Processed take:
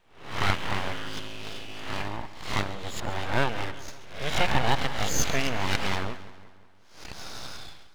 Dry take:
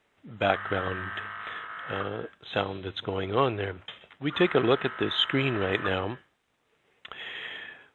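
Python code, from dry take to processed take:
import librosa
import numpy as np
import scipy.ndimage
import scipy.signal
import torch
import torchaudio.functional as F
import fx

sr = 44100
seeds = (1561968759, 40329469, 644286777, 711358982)

y = fx.spec_swells(x, sr, rise_s=0.52)
y = np.abs(y)
y = fx.echo_split(y, sr, split_hz=1800.0, low_ms=179, high_ms=136, feedback_pct=52, wet_db=-15.5)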